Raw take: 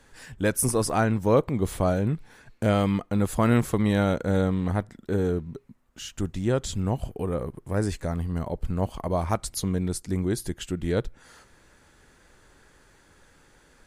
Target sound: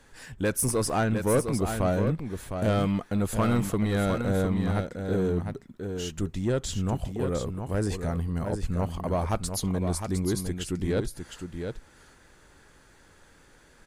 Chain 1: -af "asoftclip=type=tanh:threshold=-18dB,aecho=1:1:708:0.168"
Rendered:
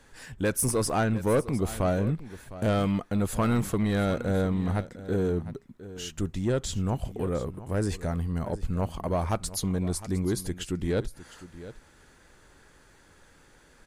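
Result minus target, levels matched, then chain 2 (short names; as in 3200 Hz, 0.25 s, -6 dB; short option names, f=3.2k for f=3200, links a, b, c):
echo-to-direct -8.5 dB
-af "asoftclip=type=tanh:threshold=-18dB,aecho=1:1:708:0.447"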